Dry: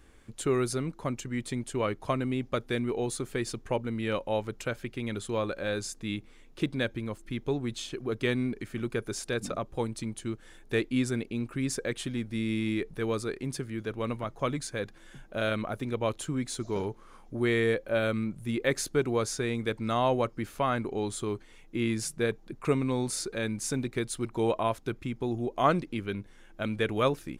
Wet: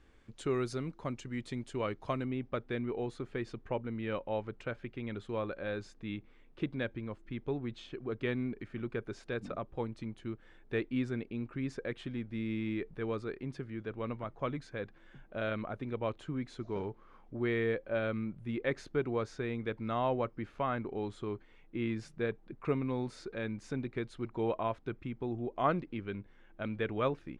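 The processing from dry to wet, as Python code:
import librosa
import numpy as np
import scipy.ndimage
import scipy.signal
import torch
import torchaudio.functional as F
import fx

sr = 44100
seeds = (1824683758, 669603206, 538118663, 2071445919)

y = fx.lowpass(x, sr, hz=fx.steps((0.0, 5200.0), (2.25, 2700.0)), slope=12)
y = F.gain(torch.from_numpy(y), -5.5).numpy()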